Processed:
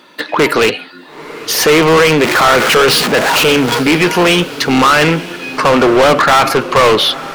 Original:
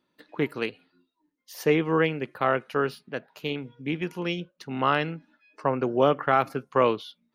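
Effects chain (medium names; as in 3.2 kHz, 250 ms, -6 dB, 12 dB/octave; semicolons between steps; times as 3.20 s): 1.82–3.83 s: jump at every zero crossing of -37 dBFS; in parallel at 0 dB: peak limiter -20.5 dBFS, peak gain reduction 11.5 dB; on the sum: overdrive pedal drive 31 dB, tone 6.5 kHz, clips at -6.5 dBFS; echo that smears into a reverb 934 ms, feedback 50%, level -15.5 dB; trim +4.5 dB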